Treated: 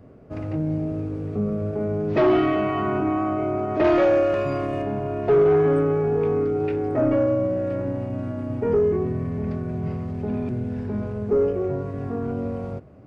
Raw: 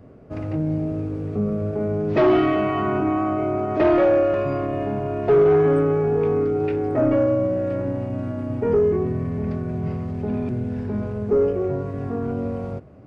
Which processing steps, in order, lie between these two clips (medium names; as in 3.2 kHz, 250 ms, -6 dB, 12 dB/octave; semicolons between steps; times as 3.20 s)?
3.84–4.82 s: treble shelf 3 kHz +10 dB; trim -1.5 dB